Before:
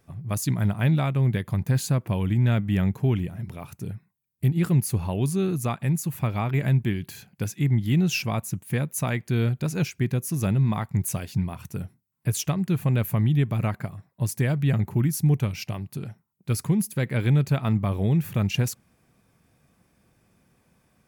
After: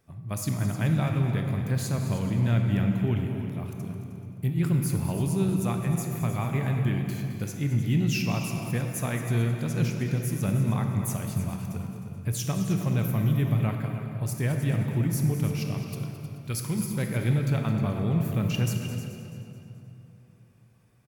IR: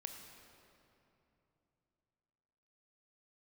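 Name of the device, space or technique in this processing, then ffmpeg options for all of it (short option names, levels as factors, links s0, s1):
cave: -filter_complex "[0:a]asettb=1/sr,asplit=3[s0][s1][s2];[s0]atrim=end=15.814[s3];[s1]atrim=start=15.81:end=16.79,asetpts=PTS-STARTPTS,afade=t=in:d=0.004:c=qsin,afade=t=out:st=0.976:d=0.004:c=qsin,tiltshelf=f=970:g=-4[s4];[s2]atrim=start=16.786[s5];[s3][s4]acrossfade=d=0.004:c1=hsin:c2=qsin[s6];[s6][s5]acrossfade=d=0.004:c1=qsin:c2=hsin,aecho=1:1:215|430|645|860|1075:0.224|0.114|0.0582|0.0297|0.0151,aecho=1:1:310:0.237[s7];[1:a]atrim=start_sample=2205[s8];[s7][s8]afir=irnorm=-1:irlink=0"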